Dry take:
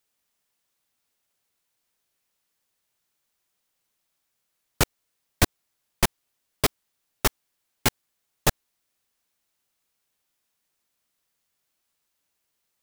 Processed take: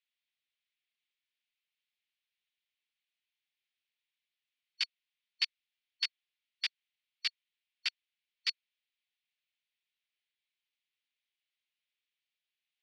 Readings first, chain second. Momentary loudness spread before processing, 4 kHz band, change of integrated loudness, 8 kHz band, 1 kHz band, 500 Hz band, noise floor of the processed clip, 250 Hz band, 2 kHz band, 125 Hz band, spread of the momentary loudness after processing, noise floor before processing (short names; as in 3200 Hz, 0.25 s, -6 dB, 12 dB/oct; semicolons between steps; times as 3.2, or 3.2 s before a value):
1 LU, -3.0 dB, -10.0 dB, -23.0 dB, -29.0 dB, under -40 dB, under -85 dBFS, under -40 dB, -10.0 dB, under -40 dB, 3 LU, -78 dBFS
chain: four-band scrambler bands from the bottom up 2341; Butterworth band-pass 2800 Hz, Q 1.5; gain -4 dB